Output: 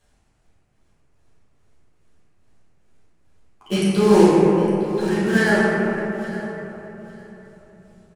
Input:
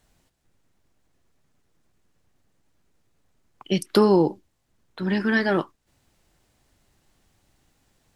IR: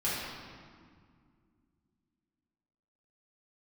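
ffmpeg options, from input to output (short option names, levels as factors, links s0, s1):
-filter_complex "[0:a]tremolo=f=2.4:d=0.66,acrusher=bits=3:mode=log:mix=0:aa=0.000001,aecho=1:1:858|1716:0.141|0.0283[s0];[1:a]atrim=start_sample=2205,asetrate=22491,aresample=44100[s1];[s0][s1]afir=irnorm=-1:irlink=0,volume=0.501"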